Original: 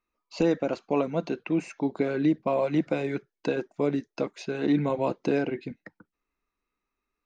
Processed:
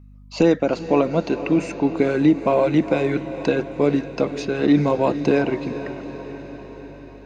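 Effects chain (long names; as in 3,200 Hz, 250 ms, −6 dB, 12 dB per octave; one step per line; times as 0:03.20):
mains hum 50 Hz, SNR 24 dB
feedback delay with all-pass diffusion 451 ms, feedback 63%, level −12 dB
level +7.5 dB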